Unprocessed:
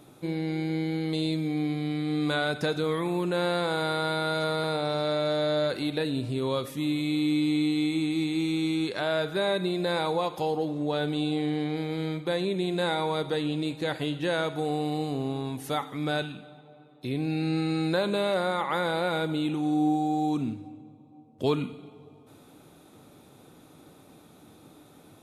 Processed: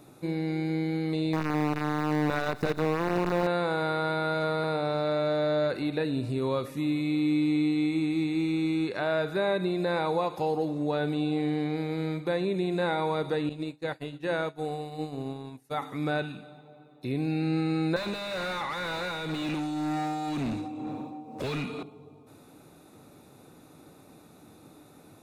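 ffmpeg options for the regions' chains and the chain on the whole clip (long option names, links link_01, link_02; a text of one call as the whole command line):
ffmpeg -i in.wav -filter_complex "[0:a]asettb=1/sr,asplit=3[link_01][link_02][link_03];[link_01]atrim=end=1.334[link_04];[link_02]atrim=start=1.33:end=3.47,asetpts=PTS-STARTPTS,afade=type=in:duration=0.004:curve=qsin,afade=type=out:start_time=2.136:duration=0.004:curve=qsin,equalizer=frequency=2200:width_type=o:width=0.56:gain=-14.5,acrusher=bits=5:dc=4:mix=0:aa=0.000001[link_05];[link_03]atrim=start=3.466[link_06];[link_04][link_05]acrossfade=duration=0.004:curve1=hsin:curve2=qsin[link_07];[link_07][link_06]acrossfade=duration=0.004:curve1=qsin:curve2=hsin,asettb=1/sr,asplit=3[link_08][link_09][link_10];[link_08]atrim=end=13.494[link_11];[link_09]atrim=start=13.49:end=15.82,asetpts=PTS-STARTPTS,afade=type=in:duration=0.004:curve=qsin,afade=type=out:start_time=2.326:duration=0.004:curve=qsin,bandreject=frequency=60:width_type=h:width=6,bandreject=frequency=120:width_type=h:width=6,bandreject=frequency=180:width_type=h:width=6,bandreject=frequency=240:width_type=h:width=6,bandreject=frequency=300:width_type=h:width=6,bandreject=frequency=360:width_type=h:width=6,bandreject=frequency=420:width_type=h:width=6,agate=range=-33dB:threshold=-26dB:ratio=3:release=100:detection=peak[link_12];[link_10]atrim=start=15.816[link_13];[link_11][link_12]acrossfade=duration=0.004:curve1=hsin:curve2=qsin[link_14];[link_14][link_13]acrossfade=duration=0.004:curve1=qsin:curve2=hsin,asettb=1/sr,asplit=3[link_15][link_16][link_17];[link_15]atrim=end=17.964[link_18];[link_16]atrim=start=17.96:end=21.83,asetpts=PTS-STARTPTS,afade=type=in:duration=0.004:curve=qsin,afade=type=out:start_time=3.866:duration=0.004:curve=qsin,acrossover=split=160|3000[link_19][link_20][link_21];[link_20]acompressor=threshold=-45dB:ratio=3:attack=3.2:release=140:knee=2.83:detection=peak[link_22];[link_19][link_22][link_21]amix=inputs=3:normalize=0,tremolo=f=2:d=0.67,asplit=2[link_23][link_24];[link_24]highpass=frequency=720:poles=1,volume=33dB,asoftclip=type=tanh:threshold=-22.5dB[link_25];[link_23][link_25]amix=inputs=2:normalize=0,lowpass=frequency=4300:poles=1,volume=-6dB[link_26];[link_17]atrim=start=21.826[link_27];[link_18][link_26]acrossfade=duration=0.004:curve1=hsin:curve2=qsin[link_28];[link_28][link_27]acrossfade=duration=0.004:curve1=qsin:curve2=hsin,bandreject=frequency=3200:width=5.4,acrossover=split=3300[link_29][link_30];[link_30]acompressor=threshold=-50dB:ratio=4:attack=1:release=60[link_31];[link_29][link_31]amix=inputs=2:normalize=0" out.wav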